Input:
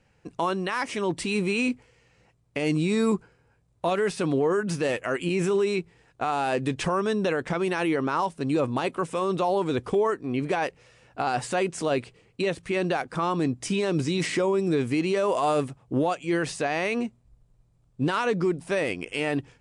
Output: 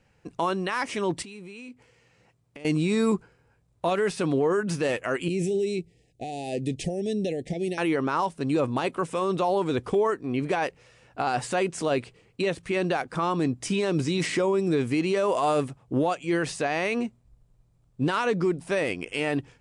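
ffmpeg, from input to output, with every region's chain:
-filter_complex "[0:a]asettb=1/sr,asplit=3[a][b][c];[a]atrim=end=1.224[d];[b]atrim=start=1.22:end=2.65,asetpts=PTS-STARTPTS,afade=t=in:d=0.004:c=qsin,afade=t=out:st=1.426:d=0.004:c=qsin,highpass=84,acompressor=threshold=-43dB:ratio=4:attack=3.2:release=140:knee=1:detection=peak[e];[c]atrim=start=2.646[f];[d][e]acrossfade=d=0.004:c1=hsin:c2=qsin[g];[g][f]acrossfade=d=0.004:c1=qsin:c2=hsin,asettb=1/sr,asplit=3[h][i][j];[h]atrim=end=5.284[k];[i]atrim=start=5.28:end=7.78,asetpts=PTS-STARTPTS,afade=t=in:d=0.004:c=qsin,afade=t=out:st=2.496:d=0.004:c=qsin,asuperstop=centerf=1200:order=12:qfactor=1.2,equalizer=f=1.4k:w=0.71:g=-13.5[l];[j]atrim=start=7.776[m];[k][l]acrossfade=d=0.004:c1=hsin:c2=qsin[n];[n][m]acrossfade=d=0.004:c1=qsin:c2=hsin"

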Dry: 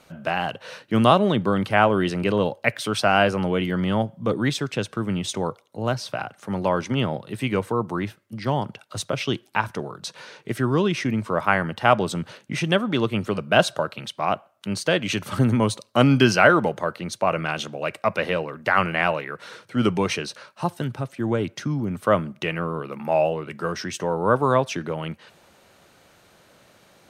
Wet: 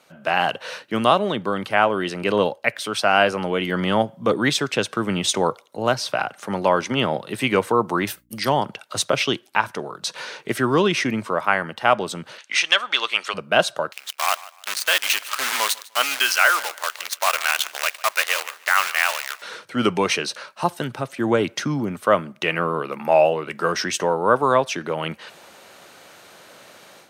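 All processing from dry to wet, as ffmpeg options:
-filter_complex "[0:a]asettb=1/sr,asplit=3[a][b][c];[a]atrim=end=8.074[d];[b]atrim=start=8.07:end=8.49,asetpts=PTS-STARTPTS,afade=t=in:d=0.004:c=qsin,afade=t=out:st=0.416:d=0.004:c=qsin,agate=range=-33dB:threshold=-57dB:ratio=3:release=100:detection=peak,aemphasis=mode=production:type=75fm,aeval=exprs='val(0)+0.00112*(sin(2*PI*60*n/s)+sin(2*PI*2*60*n/s)/2+sin(2*PI*3*60*n/s)/3+sin(2*PI*4*60*n/s)/4+sin(2*PI*5*60*n/s)/5)':c=same[e];[c]atrim=start=8.486[f];[d][e]acrossfade=d=0.004:c1=hsin:c2=qsin[g];[g][f]acrossfade=d=0.004:c1=qsin:c2=hsin,asettb=1/sr,asplit=3[h][i][j];[h]atrim=end=12.384[k];[i]atrim=start=12.38:end=13.34,asetpts=PTS-STARTPTS,afade=t=in:d=0.004:c=qsin,afade=t=out:st=0.956:d=0.004:c=qsin,tiltshelf=f=1.4k:g=-6.5,acontrast=89,highpass=790,lowpass=6.2k[l];[j]atrim=start=13.336[m];[k][l]acrossfade=d=0.004:c1=hsin:c2=qsin[n];[n][m]acrossfade=d=0.004:c1=qsin:c2=hsin,asettb=1/sr,asplit=3[o][p][q];[o]atrim=end=13.924[r];[p]atrim=start=13.92:end=19.42,asetpts=PTS-STARTPTS,afade=t=in:d=0.004:c=qsin,afade=t=out:st=5.496:d=0.004:c=qsin,acrusher=bits=5:dc=4:mix=0:aa=0.000001,highpass=1.2k,aecho=1:1:150|300:0.1|0.029,atrim=end_sample=242550[s];[q]atrim=start=19.416[t];[r][s]acrossfade=d=0.004:c1=hsin:c2=qsin[u];[u][t]acrossfade=d=0.004:c1=qsin:c2=hsin,dynaudnorm=f=200:g=3:m=11dB,highpass=f=420:p=1,volume=-1dB"

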